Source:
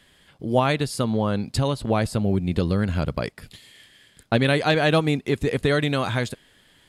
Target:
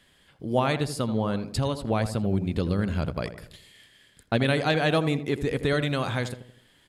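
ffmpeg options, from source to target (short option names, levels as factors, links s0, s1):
-filter_complex "[0:a]asplit=2[s0][s1];[s1]adelay=82,lowpass=f=1300:p=1,volume=0.316,asplit=2[s2][s3];[s3]adelay=82,lowpass=f=1300:p=1,volume=0.46,asplit=2[s4][s5];[s5]adelay=82,lowpass=f=1300:p=1,volume=0.46,asplit=2[s6][s7];[s7]adelay=82,lowpass=f=1300:p=1,volume=0.46,asplit=2[s8][s9];[s9]adelay=82,lowpass=f=1300:p=1,volume=0.46[s10];[s0][s2][s4][s6][s8][s10]amix=inputs=6:normalize=0,volume=0.631"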